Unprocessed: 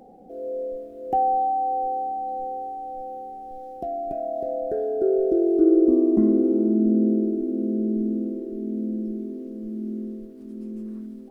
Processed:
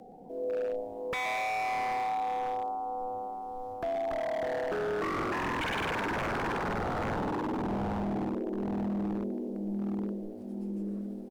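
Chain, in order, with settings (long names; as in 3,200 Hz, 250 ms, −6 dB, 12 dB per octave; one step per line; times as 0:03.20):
dynamic equaliser 340 Hz, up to +4 dB, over −29 dBFS, Q 5
in parallel at −2.5 dB: downward compressor, threshold −26 dBFS, peak gain reduction 15.5 dB
on the sum: echo with shifted repeats 120 ms, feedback 54%, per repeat +110 Hz, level −13 dB
frequency shifter −15 Hz
wave folding −20.5 dBFS
level −6.5 dB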